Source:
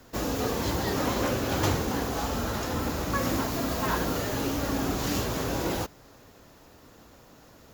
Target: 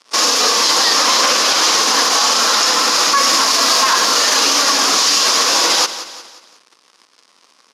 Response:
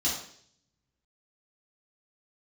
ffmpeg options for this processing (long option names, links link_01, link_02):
-filter_complex "[0:a]aderivative,bandreject=frequency=400:width=12,asplit=2[link_01][link_02];[link_02]adelay=443.1,volume=-17dB,highshelf=frequency=4000:gain=-9.97[link_03];[link_01][link_03]amix=inputs=2:normalize=0,aeval=exprs='sgn(val(0))*max(abs(val(0))-0.00251,0)':channel_layout=same,asplit=2[link_04][link_05];[link_05]asetrate=55563,aresample=44100,atempo=0.793701,volume=-18dB[link_06];[link_04][link_06]amix=inputs=2:normalize=0,asplit=2[link_07][link_08];[link_08]aecho=0:1:179|358|537|716:0.141|0.0622|0.0273|0.012[link_09];[link_07][link_09]amix=inputs=2:normalize=0,acontrast=77,highpass=frequency=200:width=0.5412,highpass=frequency=200:width=1.3066,equalizer=frequency=470:width_type=q:width=4:gain=4,equalizer=frequency=1100:width_type=q:width=4:gain=9,equalizer=frequency=5000:width_type=q:width=4:gain=5,equalizer=frequency=7500:width_type=q:width=4:gain=-8,lowpass=frequency=8000:width=0.5412,lowpass=frequency=8000:width=1.3066,alimiter=level_in=30dB:limit=-1dB:release=50:level=0:latency=1,volume=-3dB"